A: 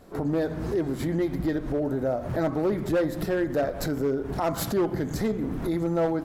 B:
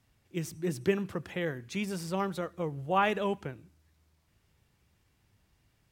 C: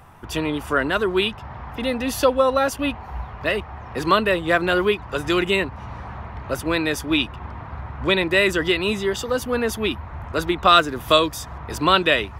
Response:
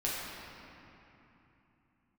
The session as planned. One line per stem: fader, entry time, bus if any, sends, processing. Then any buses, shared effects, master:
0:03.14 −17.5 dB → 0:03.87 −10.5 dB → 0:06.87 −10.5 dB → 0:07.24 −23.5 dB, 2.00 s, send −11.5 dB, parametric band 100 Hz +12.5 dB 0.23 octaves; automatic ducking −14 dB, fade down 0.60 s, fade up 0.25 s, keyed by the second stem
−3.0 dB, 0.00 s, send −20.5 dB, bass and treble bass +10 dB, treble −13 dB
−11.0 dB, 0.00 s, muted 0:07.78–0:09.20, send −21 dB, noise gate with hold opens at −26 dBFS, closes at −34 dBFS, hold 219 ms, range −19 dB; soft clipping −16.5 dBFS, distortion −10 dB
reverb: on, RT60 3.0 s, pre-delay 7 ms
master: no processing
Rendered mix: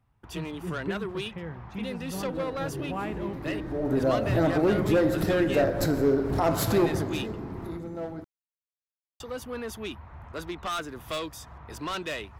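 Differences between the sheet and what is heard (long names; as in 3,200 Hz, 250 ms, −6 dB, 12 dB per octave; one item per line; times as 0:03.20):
stem A −17.5 dB → −7.5 dB
stem B −3.0 dB → −9.5 dB
stem C: send off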